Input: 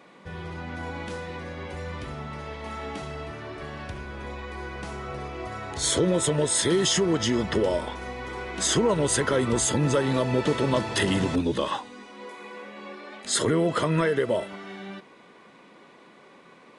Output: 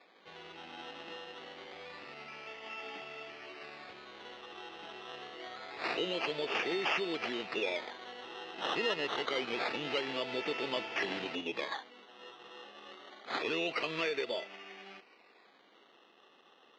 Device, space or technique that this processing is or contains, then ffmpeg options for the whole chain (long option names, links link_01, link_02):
circuit-bent sampling toy: -af "acrusher=samples=15:mix=1:aa=0.000001:lfo=1:lforange=9:lforate=0.26,highpass=500,equalizer=frequency=570:width_type=q:width=4:gain=-6,equalizer=frequency=1000:width_type=q:width=4:gain=-7,equalizer=frequency=1500:width_type=q:width=4:gain=-5,equalizer=frequency=2700:width_type=q:width=4:gain=7,lowpass=frequency=4300:width=0.5412,lowpass=frequency=4300:width=1.3066,volume=-5.5dB"